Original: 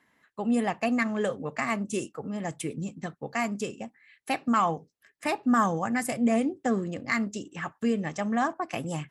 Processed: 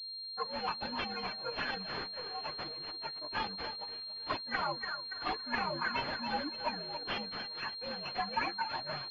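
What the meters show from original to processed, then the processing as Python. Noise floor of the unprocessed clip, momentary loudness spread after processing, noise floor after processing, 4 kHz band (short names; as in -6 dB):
-74 dBFS, 5 LU, -44 dBFS, +8.5 dB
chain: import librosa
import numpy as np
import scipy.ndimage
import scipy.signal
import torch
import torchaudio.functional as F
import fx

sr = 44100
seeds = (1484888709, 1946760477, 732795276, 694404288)

p1 = fx.partial_stretch(x, sr, pct=120)
p2 = fx.highpass(p1, sr, hz=1400.0, slope=6)
p3 = fx.tilt_eq(p2, sr, slope=2.0)
p4 = p3 + fx.echo_feedback(p3, sr, ms=283, feedback_pct=48, wet_db=-12.0, dry=0)
p5 = fx.env_flanger(p4, sr, rest_ms=4.5, full_db=-29.5)
p6 = p5 + 0.49 * np.pad(p5, (int(6.5 * sr / 1000.0), 0))[:len(p5)]
p7 = fx.leveller(p6, sr, passes=2)
y = fx.pwm(p7, sr, carrier_hz=4200.0)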